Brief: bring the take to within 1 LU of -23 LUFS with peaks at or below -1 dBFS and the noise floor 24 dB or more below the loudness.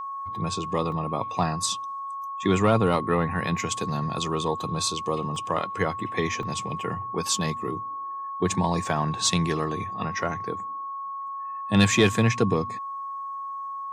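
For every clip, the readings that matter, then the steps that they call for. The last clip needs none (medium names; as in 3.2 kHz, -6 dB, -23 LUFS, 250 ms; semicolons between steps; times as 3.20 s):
dropouts 3; longest dropout 2.2 ms; steady tone 1.1 kHz; tone level -31 dBFS; loudness -26.5 LUFS; peak level -9.0 dBFS; loudness target -23.0 LUFS
-> interpolate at 0.92/5.36/6.43 s, 2.2 ms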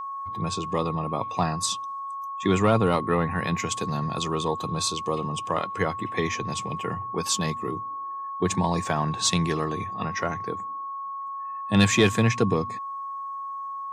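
dropouts 0; steady tone 1.1 kHz; tone level -31 dBFS
-> band-stop 1.1 kHz, Q 30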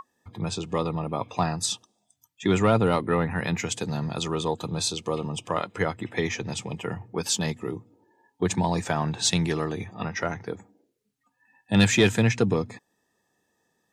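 steady tone not found; loudness -26.5 LUFS; peak level -9.5 dBFS; loudness target -23.0 LUFS
-> trim +3.5 dB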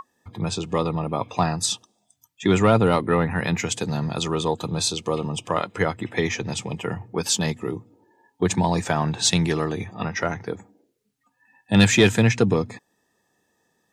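loudness -23.0 LUFS; peak level -6.0 dBFS; noise floor -72 dBFS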